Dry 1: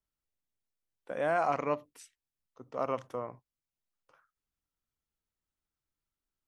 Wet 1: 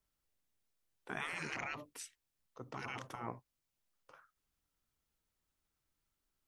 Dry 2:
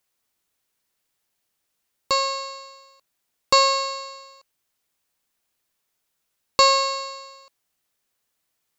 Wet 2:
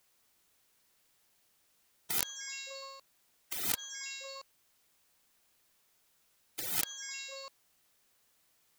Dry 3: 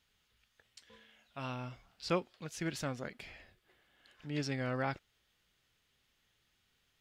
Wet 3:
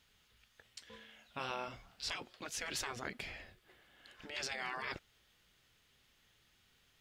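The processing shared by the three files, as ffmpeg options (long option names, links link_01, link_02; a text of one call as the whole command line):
ffmpeg -i in.wav -af "aeval=exprs='(mod(4.73*val(0)+1,2)-1)/4.73':channel_layout=same,afftfilt=real='re*lt(hypot(re,im),0.0316)':imag='im*lt(hypot(re,im),0.0316)':win_size=1024:overlap=0.75,volume=5dB" out.wav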